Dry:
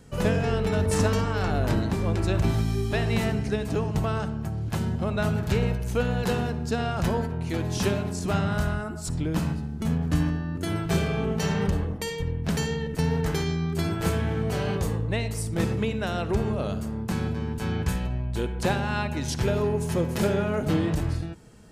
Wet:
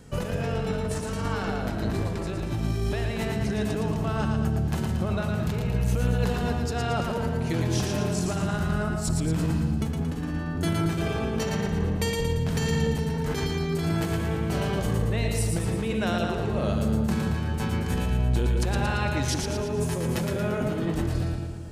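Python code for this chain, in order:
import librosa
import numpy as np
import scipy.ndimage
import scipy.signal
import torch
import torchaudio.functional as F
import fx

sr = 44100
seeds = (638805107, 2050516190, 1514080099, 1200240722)

p1 = fx.over_compress(x, sr, threshold_db=-28.0, ratio=-1.0)
y = p1 + fx.echo_split(p1, sr, split_hz=590.0, low_ms=177, high_ms=114, feedback_pct=52, wet_db=-4.0, dry=0)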